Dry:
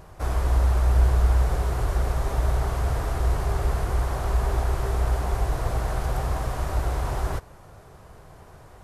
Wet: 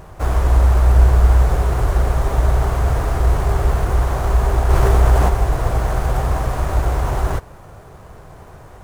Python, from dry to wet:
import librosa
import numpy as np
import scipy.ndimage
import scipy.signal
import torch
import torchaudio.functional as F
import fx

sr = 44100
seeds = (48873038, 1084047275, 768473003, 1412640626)

p1 = fx.sample_hold(x, sr, seeds[0], rate_hz=7600.0, jitter_pct=20)
p2 = x + (p1 * 10.0 ** (-3.0 / 20.0))
p3 = fx.env_flatten(p2, sr, amount_pct=50, at=(4.69, 5.28), fade=0.02)
y = p3 * 10.0 ** (3.0 / 20.0)